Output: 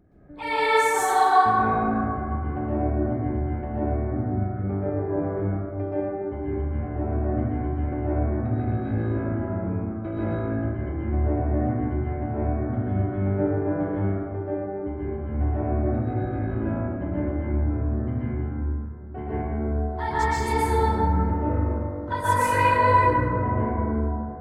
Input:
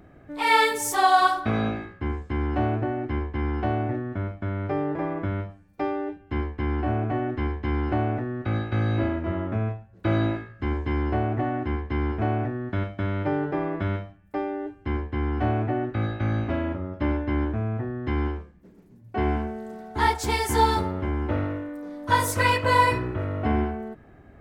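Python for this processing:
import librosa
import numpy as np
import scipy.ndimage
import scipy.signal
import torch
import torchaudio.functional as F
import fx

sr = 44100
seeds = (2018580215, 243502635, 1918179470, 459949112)

y = fx.envelope_sharpen(x, sr, power=1.5)
y = fx.rev_plate(y, sr, seeds[0], rt60_s=2.7, hf_ratio=0.3, predelay_ms=110, drr_db=-9.5)
y = y * librosa.db_to_amplitude(-8.5)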